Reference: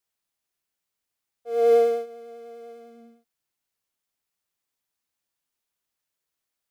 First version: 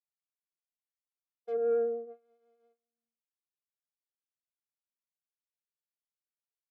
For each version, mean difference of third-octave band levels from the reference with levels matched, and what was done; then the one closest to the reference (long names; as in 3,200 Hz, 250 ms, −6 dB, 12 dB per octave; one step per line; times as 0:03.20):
5.0 dB: noise gate −38 dBFS, range −45 dB
treble cut that deepens with the level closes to 360 Hz, closed at −22.5 dBFS
soft clipping −18 dBFS, distortion −22 dB
high-frequency loss of the air 68 metres
level −3 dB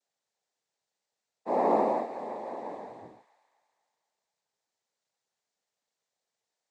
10.0 dB: parametric band 670 Hz +11.5 dB 1.1 octaves
downward compressor 2.5 to 1, threshold −25 dBFS, peak gain reduction 11.5 dB
cochlear-implant simulation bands 6
on a send: delay with a high-pass on its return 245 ms, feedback 49%, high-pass 1,700 Hz, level −9.5 dB
on the sum: level −2.5 dB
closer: first